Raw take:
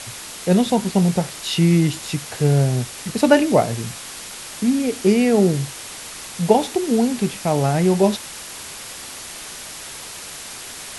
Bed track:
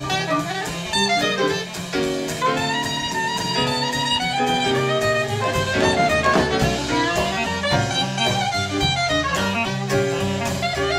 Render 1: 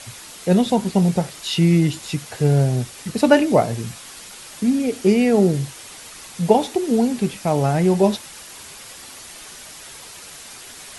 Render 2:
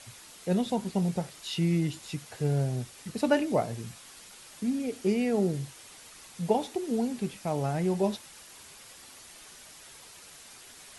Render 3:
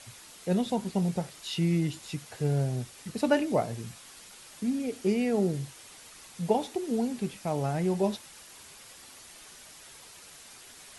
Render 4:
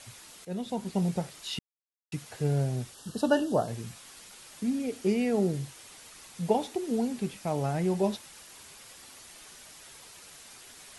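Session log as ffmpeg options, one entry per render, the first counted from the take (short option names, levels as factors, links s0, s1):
-af "afftdn=nr=6:nf=-35"
-af "volume=0.282"
-af anull
-filter_complex "[0:a]asettb=1/sr,asplit=3[s0][s1][s2];[s0]atrim=end=2.944[s3];[s1]atrim=start=2.94:end=3.68,asetpts=PTS-STARTPTS,afade=t=in:d=0.004:c=qsin,afade=t=out:st=0.736:d=0.004:c=qsin,asuperstop=centerf=2200:order=12:qfactor=2.4[s4];[s2]atrim=start=3.676[s5];[s3][s4]acrossfade=d=0.004:c1=hsin:c2=qsin[s6];[s6][s5]acrossfade=d=0.004:c1=qsin:c2=hsin,asplit=4[s7][s8][s9][s10];[s7]atrim=end=0.45,asetpts=PTS-STARTPTS,afade=t=out:st=0.446:d=0.004:c=hsin:silence=0.251189[s11];[s8]atrim=start=0.45:end=1.59,asetpts=PTS-STARTPTS,afade=t=in:d=0.56:silence=0.251189,afade=t=out:st=1.136:d=0.004:c=hsin[s12];[s9]atrim=start=1.59:end=2.12,asetpts=PTS-STARTPTS,volume=0[s13];[s10]atrim=start=2.12,asetpts=PTS-STARTPTS,afade=t=in:d=0.004:c=hsin[s14];[s11][s12][s13][s14]concat=n=4:v=0:a=1"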